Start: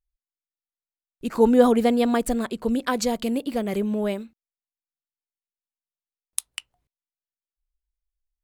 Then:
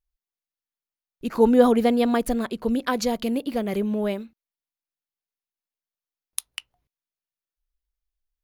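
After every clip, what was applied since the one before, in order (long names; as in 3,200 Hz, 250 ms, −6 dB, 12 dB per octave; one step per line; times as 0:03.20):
parametric band 8,000 Hz −12 dB 0.23 octaves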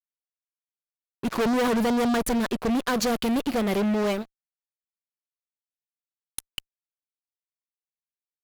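fuzz pedal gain 30 dB, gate −38 dBFS
level −8 dB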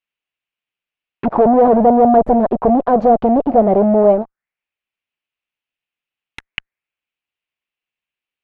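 envelope-controlled low-pass 690–2,700 Hz down, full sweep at −24 dBFS
level +8 dB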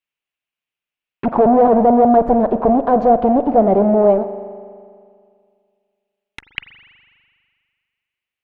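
convolution reverb RT60 2.1 s, pre-delay 41 ms, DRR 11 dB
level −1 dB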